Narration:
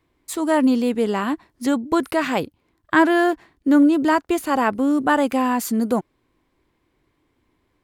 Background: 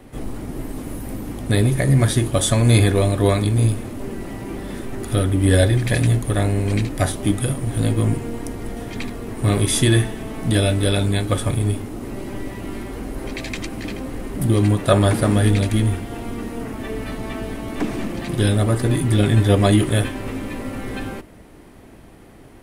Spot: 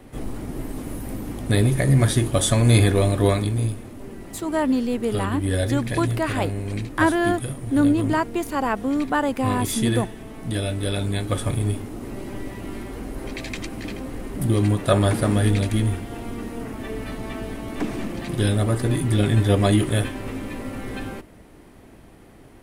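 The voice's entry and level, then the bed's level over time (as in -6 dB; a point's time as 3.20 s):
4.05 s, -4.0 dB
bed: 3.25 s -1.5 dB
3.76 s -8 dB
10.62 s -8 dB
11.47 s -3 dB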